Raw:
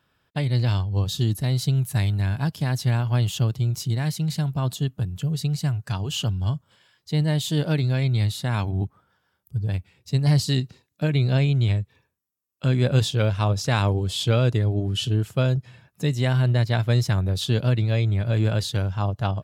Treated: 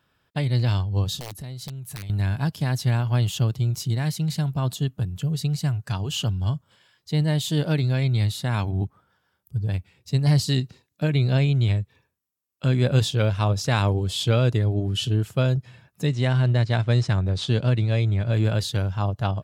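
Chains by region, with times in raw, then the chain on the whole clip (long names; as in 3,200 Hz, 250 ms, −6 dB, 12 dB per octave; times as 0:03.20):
0:01.16–0:02.10: wrap-around overflow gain 14.5 dB + downward compressor 16 to 1, threshold −32 dBFS
0:16.07–0:18.32: running median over 5 samples + Butterworth low-pass 9,600 Hz 48 dB per octave
whole clip: no processing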